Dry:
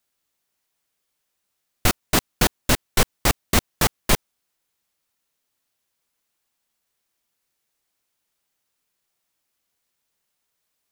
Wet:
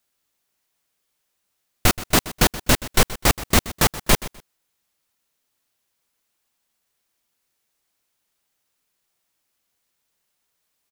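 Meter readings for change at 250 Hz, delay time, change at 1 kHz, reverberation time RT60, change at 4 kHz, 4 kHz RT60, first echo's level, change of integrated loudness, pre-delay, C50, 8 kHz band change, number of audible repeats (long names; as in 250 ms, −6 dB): +2.0 dB, 126 ms, +2.0 dB, no reverb audible, +2.0 dB, no reverb audible, −16.5 dB, +2.0 dB, no reverb audible, no reverb audible, +2.0 dB, 2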